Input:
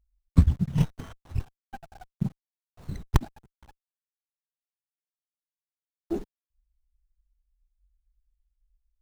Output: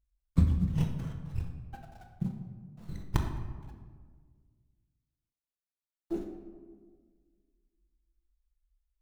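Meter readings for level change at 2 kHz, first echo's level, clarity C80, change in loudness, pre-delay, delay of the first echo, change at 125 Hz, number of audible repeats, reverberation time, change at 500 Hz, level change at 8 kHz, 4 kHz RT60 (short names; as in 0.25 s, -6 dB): -5.0 dB, none, 7.5 dB, -5.5 dB, 6 ms, none, -4.5 dB, none, 1.7 s, -4.0 dB, -6.0 dB, 0.85 s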